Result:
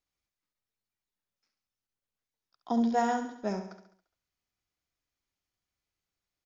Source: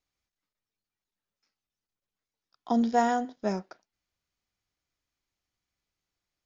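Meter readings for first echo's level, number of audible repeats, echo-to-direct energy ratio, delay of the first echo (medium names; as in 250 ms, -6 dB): -9.0 dB, 5, -8.0 dB, 69 ms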